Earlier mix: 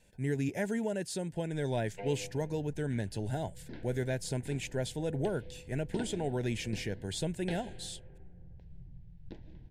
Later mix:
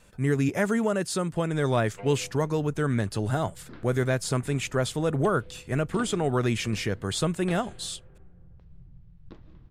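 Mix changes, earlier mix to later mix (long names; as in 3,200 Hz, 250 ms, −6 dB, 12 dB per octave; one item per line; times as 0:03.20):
speech +8.0 dB
master: remove Butterworth band-reject 1,200 Hz, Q 1.9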